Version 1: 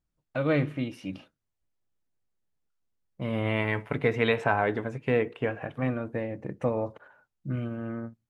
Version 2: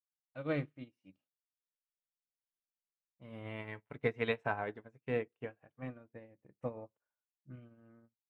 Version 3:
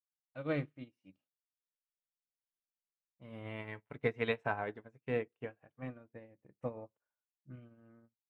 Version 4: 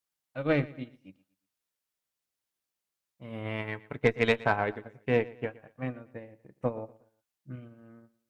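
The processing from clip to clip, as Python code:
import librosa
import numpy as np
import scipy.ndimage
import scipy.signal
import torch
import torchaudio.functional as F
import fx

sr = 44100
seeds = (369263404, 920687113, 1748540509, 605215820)

y1 = fx.upward_expand(x, sr, threshold_db=-43.0, expansion=2.5)
y1 = y1 * librosa.db_to_amplitude(-6.5)
y2 = y1
y3 = fx.cheby_harmonics(y2, sr, harmonics=(6,), levels_db=(-25,), full_scale_db=-17.0)
y3 = fx.echo_feedback(y3, sr, ms=118, feedback_pct=35, wet_db=-20)
y3 = y3 * librosa.db_to_amplitude(8.5)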